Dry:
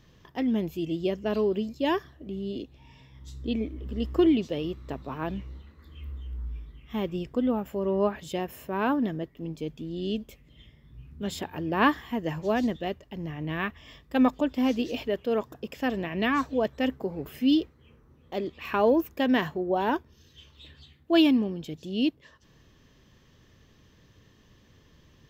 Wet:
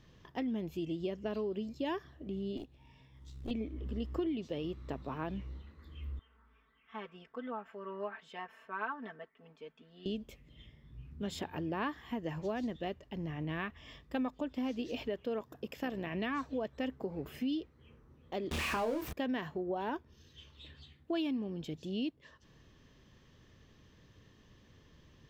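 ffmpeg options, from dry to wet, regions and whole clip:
-filter_complex "[0:a]asettb=1/sr,asplit=3[s0][s1][s2];[s0]atrim=end=2.574[s3];[s1]atrim=start=2.57:end=3.51,asetpts=PTS-STARTPTS,afade=t=in:d=0.004:c=qsin,afade=t=out:st=0.936:d=0.004:c=qsin,highshelf=f=10000:g=-9.5,acrusher=bits=7:mode=log:mix=0:aa=0.000001,aeval=exprs='(tanh(28.2*val(0)+0.75)-tanh(0.75))/28.2':c=same[s4];[s2]atrim=start=3.506[s5];[s3][s4]acrossfade=d=0.004:c1=hsin:c2=qsin[s6];[s6][s5]acrossfade=d=0.004:c1=qsin:c2=hsin,asettb=1/sr,asplit=3[s7][s8][s9];[s7]atrim=end=6.194[s10];[s8]atrim=start=6.19:end=10.06,asetpts=PTS-STARTPTS,afade=t=in:d=0.004:c=qsin,afade=t=out:st=3.866:d=0.004:c=qsin,bandpass=f=1400:t=q:w=1.9,aecho=1:1:4.5:0.94,atrim=end_sample=170667[s11];[s9]atrim=start=10.056[s12];[s10][s11]acrossfade=d=0.004:c1=hsin:c2=qsin[s13];[s13][s12]acrossfade=d=0.004:c1=qsin:c2=hsin,asettb=1/sr,asplit=3[s14][s15][s16];[s14]atrim=end=15.394[s17];[s15]atrim=start=15.39:end=16.07,asetpts=PTS-STARTPTS,afade=t=in:d=0.004:c=qsin,afade=t=out:st=0.676:d=0.004:c=qsin,equalizer=f=13000:t=o:w=0.55:g=7.5,tremolo=f=66:d=0.4,highpass=47[s18];[s16]atrim=start=16.066[s19];[s17][s18]acrossfade=d=0.004:c1=hsin:c2=qsin[s20];[s20][s19]acrossfade=d=0.004:c1=qsin:c2=hsin,asettb=1/sr,asplit=3[s21][s22][s23];[s21]atrim=end=18.514[s24];[s22]atrim=start=18.51:end=19.13,asetpts=PTS-STARTPTS,afade=t=in:d=0.004:c=qsin,afade=t=out:st=0.616:d=0.004:c=qsin,aeval=exprs='val(0)+0.5*0.0531*sgn(val(0))':c=same,asplit=2[s25][s26];[s26]adelay=26,volume=0.531[s27];[s25][s27]amix=inputs=2:normalize=0,atrim=end_sample=27342[s28];[s23]atrim=start=19.126[s29];[s24][s28]acrossfade=d=0.004:c1=hsin:c2=qsin[s30];[s30][s29]acrossfade=d=0.004:c1=qsin:c2=hsin,highshelf=f=10000:g=-9.5,acompressor=threshold=0.0282:ratio=4,volume=0.708"

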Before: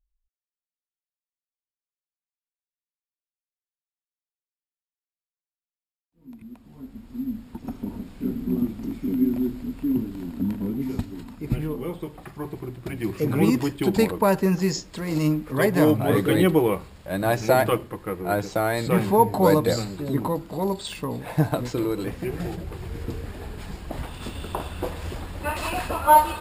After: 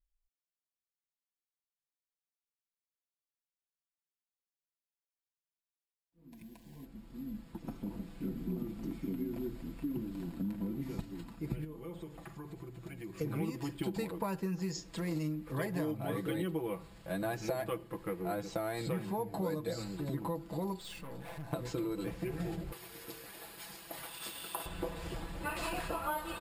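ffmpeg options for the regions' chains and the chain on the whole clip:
-filter_complex "[0:a]asettb=1/sr,asplit=3[s0][s1][s2];[s0]atrim=end=6.324[s3];[s1]atrim=start=6.32:end=6.85,asetpts=PTS-STARTPTS,afade=t=in:d=0.004:c=qsin,afade=t=out:st=0.526:d=0.004:c=qsin,aeval=exprs='val(0)+0.5*0.00178*sgn(val(0))':c=same,asuperstop=centerf=1300:order=12:qfactor=3.5,highshelf=f=3200:g=7.5[s4];[s2]atrim=start=6.846[s5];[s3][s4]acrossfade=d=0.004:c1=hsin:c2=qsin[s6];[s6][s5]acrossfade=d=0.004:c1=qsin:c2=hsin,asettb=1/sr,asplit=3[s7][s8][s9];[s7]atrim=end=11.644[s10];[s8]atrim=start=11.64:end=13.21,asetpts=PTS-STARTPTS,afade=t=in:d=0.004:c=qsin,afade=t=out:st=1.566:d=0.004:c=qsin,equalizer=f=6900:w=6.4:g=6.5,acompressor=threshold=0.0141:ratio=4:attack=3.2:release=140:knee=1:detection=peak[s11];[s9]atrim=start=13.206[s12];[s10][s11]acrossfade=d=0.004:c1=hsin:c2=qsin[s13];[s13][s12]acrossfade=d=0.004:c1=qsin:c2=hsin,asettb=1/sr,asplit=3[s14][s15][s16];[s14]atrim=end=20.794[s17];[s15]atrim=start=20.79:end=21.53,asetpts=PTS-STARTPTS,afade=t=in:d=0.004:c=qsin,afade=t=out:st=0.736:d=0.004:c=qsin,acompressor=threshold=0.0398:ratio=4:attack=3.2:release=140:knee=1:detection=peak,aeval=exprs='(tanh(63.1*val(0)+0.55)-tanh(0.55))/63.1':c=same[s18];[s16]atrim=start=21.526[s19];[s17][s18]acrossfade=d=0.004:c1=hsin:c2=qsin[s20];[s20][s19]acrossfade=d=0.004:c1=qsin:c2=hsin,asettb=1/sr,asplit=3[s21][s22][s23];[s21]atrim=end=22.724[s24];[s22]atrim=start=22.72:end=24.66,asetpts=PTS-STARTPTS,afade=t=in:d=0.004:c=qsin,afade=t=out:st=1.936:d=0.004:c=qsin,highpass=f=910:p=1,aemphasis=mode=production:type=50kf,bandreject=f=7500:w=8.6[s25];[s23]atrim=start=24.656[s26];[s24][s25]acrossfade=d=0.004:c1=hsin:c2=qsin[s27];[s27][s26]acrossfade=d=0.004:c1=qsin:c2=hsin,aecho=1:1:6:0.65,acompressor=threshold=0.0562:ratio=6,volume=0.398"

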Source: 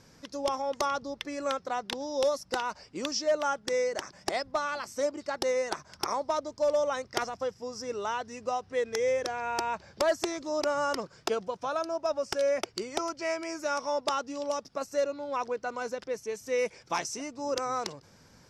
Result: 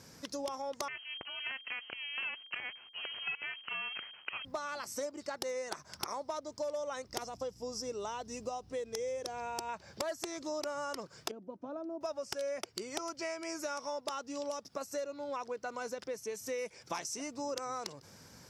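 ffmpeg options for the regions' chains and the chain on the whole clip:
-filter_complex "[0:a]asettb=1/sr,asplit=3[s0][s1][s2];[s0]atrim=end=0.884[s3];[s1]atrim=start=0.88:end=4.45,asetpts=PTS-STARTPTS,afade=t=in:d=0.004:c=qsin,afade=t=out:st=3.566:d=0.004:c=qsin,acompressor=threshold=0.00794:ratio=1.5:attack=3.2:release=140:knee=1:detection=peak,acrusher=bits=6:dc=4:mix=0:aa=0.000001,lowpass=f=2700:t=q:w=0.5098,lowpass=f=2700:t=q:w=0.6013,lowpass=f=2700:t=q:w=0.9,lowpass=f=2700:t=q:w=2.563,afreqshift=-3200[s4];[s2]atrim=start=4.446[s5];[s3][s4]acrossfade=d=0.004:c1=hsin:c2=qsin[s6];[s6][s5]acrossfade=d=0.004:c1=qsin:c2=hsin,asettb=1/sr,asplit=3[s7][s8][s9];[s7]atrim=end=7.084[s10];[s8]atrim=start=7.08:end=9.69,asetpts=PTS-STARTPTS,afade=t=in:d=0.004:c=qsin,afade=t=out:st=2.606:d=0.004:c=qsin,equalizer=f=1700:t=o:w=1.1:g=-8.5,aeval=exprs='val(0)+0.00158*(sin(2*PI*60*n/s)+sin(2*PI*2*60*n/s)/2+sin(2*PI*3*60*n/s)/3+sin(2*PI*4*60*n/s)/4+sin(2*PI*5*60*n/s)/5)':c=same[s11];[s9]atrim=start=9.686[s12];[s10][s11]acrossfade=d=0.004:c1=hsin:c2=qsin[s13];[s13][s12]acrossfade=d=0.004:c1=qsin:c2=hsin,asettb=1/sr,asplit=3[s14][s15][s16];[s14]atrim=end=11.314[s17];[s15]atrim=start=11.31:end=12.01,asetpts=PTS-STARTPTS,afade=t=in:d=0.004:c=qsin,afade=t=out:st=0.696:d=0.004:c=qsin,bandpass=f=250:t=q:w=1.8,aecho=1:1:3.3:0.38,atrim=end_sample=30870[s18];[s16]atrim=start=12.006[s19];[s17][s18]acrossfade=d=0.004:c1=hsin:c2=qsin[s20];[s20][s19]acrossfade=d=0.004:c1=qsin:c2=hsin,highpass=59,highshelf=f=8400:g=11.5,acompressor=threshold=0.0126:ratio=4,volume=1.12"

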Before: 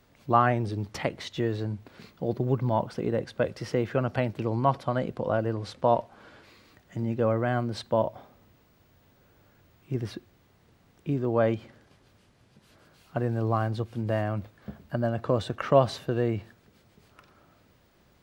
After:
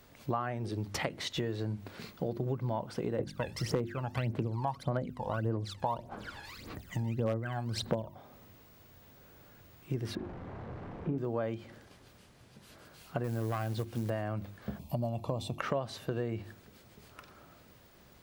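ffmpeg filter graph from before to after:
-filter_complex "[0:a]asettb=1/sr,asplit=3[s0][s1][s2];[s0]atrim=end=3.194[s3];[s1]atrim=start=3.19:end=8.14,asetpts=PTS-STARTPTS,afade=t=in:d=0.004:c=qsin,afade=t=out:st=4.946:d=0.004:c=qsin,aphaser=in_gain=1:out_gain=1:delay=1.2:decay=0.79:speed=1.7:type=sinusoidal,aeval=exprs='0.668*(abs(mod(val(0)/0.668+3,4)-2)-1)':c=same[s4];[s2]atrim=start=8.136[s5];[s3][s4]acrossfade=d=0.004:c1=hsin:c2=qsin[s6];[s6][s5]acrossfade=d=0.004:c1=qsin:c2=hsin,asettb=1/sr,asplit=3[s7][s8][s9];[s7]atrim=end=10.154[s10];[s8]atrim=start=10.15:end=11.18,asetpts=PTS-STARTPTS,afade=t=in:d=0.004:c=qsin,afade=t=out:st=1.026:d=0.004:c=qsin,aeval=exprs='val(0)+0.5*0.00944*sgn(val(0))':c=same,lowpass=1100,asplit=2[s11][s12];[s12]adelay=40,volume=0.596[s13];[s11][s13]amix=inputs=2:normalize=0,atrim=end_sample=45423[s14];[s9]atrim=start=11.176[s15];[s10][s14]acrossfade=d=0.004:c1=hsin:c2=qsin[s16];[s16][s15]acrossfade=d=0.004:c1=qsin:c2=hsin,asettb=1/sr,asplit=3[s17][s18][s19];[s17]atrim=end=13.244[s20];[s18]atrim=start=13.24:end=14.1,asetpts=PTS-STARTPTS,afade=t=in:d=0.004:c=qsin,afade=t=out:st=0.856:d=0.004:c=qsin,asoftclip=type=hard:threshold=0.0841,acrusher=bits=6:mode=log:mix=0:aa=0.000001[s21];[s19]atrim=start=14.096[s22];[s20][s21]acrossfade=d=0.004:c1=hsin:c2=qsin[s23];[s23][s22]acrossfade=d=0.004:c1=qsin:c2=hsin,asettb=1/sr,asplit=3[s24][s25][s26];[s24]atrim=end=14.794[s27];[s25]atrim=start=14.79:end=15.6,asetpts=PTS-STARTPTS,afade=t=in:d=0.004:c=qsin,afade=t=out:st=0.806:d=0.004:c=qsin,asuperstop=centerf=1600:order=4:qfactor=1.4,equalizer=f=13000:t=o:w=0.48:g=9.5,aecho=1:1:1.2:0.46,atrim=end_sample=35721[s28];[s26]atrim=start=15.596[s29];[s27][s28]acrossfade=d=0.004:c1=hsin:c2=qsin[s30];[s30][s29]acrossfade=d=0.004:c1=qsin:c2=hsin,highshelf=f=8000:g=6.5,bandreject=f=50:t=h:w=6,bandreject=f=100:t=h:w=6,bandreject=f=150:t=h:w=6,bandreject=f=200:t=h:w=6,bandreject=f=250:t=h:w=6,bandreject=f=300:t=h:w=6,bandreject=f=350:t=h:w=6,acompressor=threshold=0.02:ratio=6,volume=1.41"

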